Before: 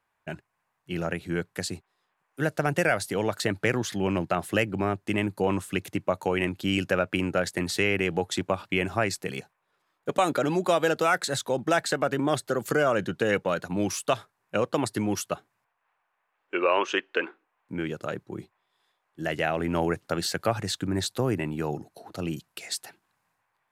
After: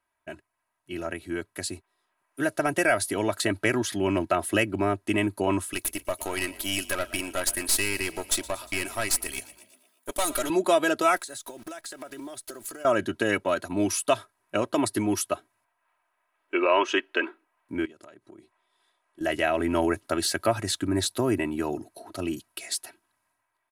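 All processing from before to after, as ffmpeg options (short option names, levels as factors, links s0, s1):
-filter_complex "[0:a]asettb=1/sr,asplit=3[s0][s1][s2];[s0]atrim=end=5.734[s3];[s1]atrim=start=5.73:end=10.5,asetpts=PTS-STARTPTS,afade=t=in:d=0.004:c=qsin,afade=t=out:st=4.766:d=0.004:c=qsin,aemphasis=mode=production:type=riaa,aeval=exprs='(tanh(12.6*val(0)+0.7)-tanh(0.7))/12.6':c=same,asplit=6[s4][s5][s6][s7][s8][s9];[s5]adelay=118,afreqshift=50,volume=0.112[s10];[s6]adelay=236,afreqshift=100,volume=0.0684[s11];[s7]adelay=354,afreqshift=150,volume=0.0417[s12];[s8]adelay=472,afreqshift=200,volume=0.0254[s13];[s9]adelay=590,afreqshift=250,volume=0.0155[s14];[s4][s10][s11][s12][s13][s14]amix=inputs=6:normalize=0,atrim=end_sample=210357[s15];[s2]atrim=start=10.496[s16];[s3][s15]acrossfade=d=0.004:c1=hsin:c2=qsin[s17];[s17][s16]acrossfade=d=0.004:c1=qsin:c2=hsin,asettb=1/sr,asplit=3[s18][s19][s20];[s18]atrim=end=11.164[s21];[s19]atrim=start=11.16:end=12.85,asetpts=PTS-STARTPTS,afade=t=in:d=0.004:c=qsin,afade=t=out:st=1.686:d=0.004:c=qsin,bass=f=250:g=-5,treble=f=4000:g=8,acrusher=bits=8:dc=4:mix=0:aa=0.000001,acompressor=threshold=0.0141:ratio=16:attack=3.2:release=140:knee=1:detection=peak[s22];[s20]atrim=start=12.846[s23];[s21][s22]acrossfade=d=0.004:c1=hsin:c2=qsin[s24];[s24][s23]acrossfade=d=0.004:c1=qsin:c2=hsin,asettb=1/sr,asplit=3[s25][s26][s27];[s25]atrim=end=17.854[s28];[s26]atrim=start=17.85:end=19.21,asetpts=PTS-STARTPTS,afade=t=in:d=0.004:c=qsin,afade=t=out:st=1.356:d=0.004:c=qsin,equalizer=f=63:w=0.85:g=-9,acompressor=threshold=0.00447:ratio=8:attack=3.2:release=140:knee=1:detection=peak,lowpass=f=11000:w=0.5412,lowpass=f=11000:w=1.3066[s29];[s27]atrim=start=19.206[s30];[s28][s29]acrossfade=d=0.004:c1=hsin:c2=qsin[s31];[s31][s30]acrossfade=d=0.004:c1=qsin:c2=hsin,equalizer=f=10000:w=4.1:g=11,aecho=1:1:3.1:0.71,dynaudnorm=f=780:g=5:m=1.88,volume=0.562"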